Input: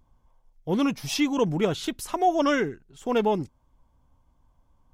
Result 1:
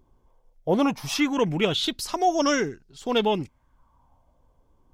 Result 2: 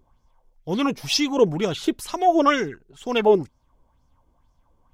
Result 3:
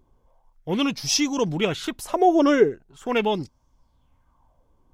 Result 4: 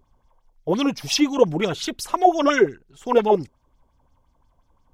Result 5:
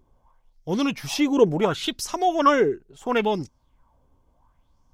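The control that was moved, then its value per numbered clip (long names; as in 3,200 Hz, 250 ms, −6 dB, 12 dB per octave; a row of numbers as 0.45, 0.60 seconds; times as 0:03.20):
auto-filter bell, speed: 0.2, 2.1, 0.41, 5.7, 0.72 Hertz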